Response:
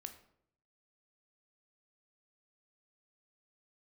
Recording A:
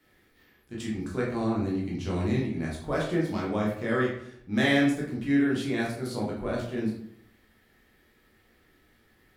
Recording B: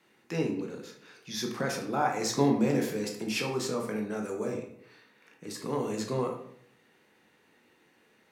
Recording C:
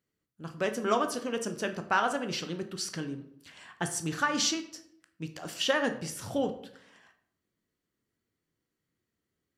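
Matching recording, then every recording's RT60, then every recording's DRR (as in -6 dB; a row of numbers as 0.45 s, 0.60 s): C; 0.70 s, 0.70 s, 0.70 s; -5.0 dB, 1.0 dB, 7.0 dB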